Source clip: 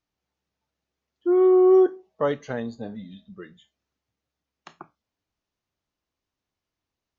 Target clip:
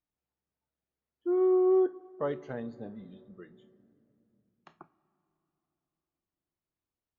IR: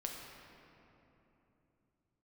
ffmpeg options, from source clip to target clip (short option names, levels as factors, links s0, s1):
-filter_complex "[0:a]lowpass=f=1900:p=1,asplit=2[s0][s1];[1:a]atrim=start_sample=2205,lowshelf=f=360:g=5.5[s2];[s1][s2]afir=irnorm=-1:irlink=0,volume=0.158[s3];[s0][s3]amix=inputs=2:normalize=0,volume=0.355"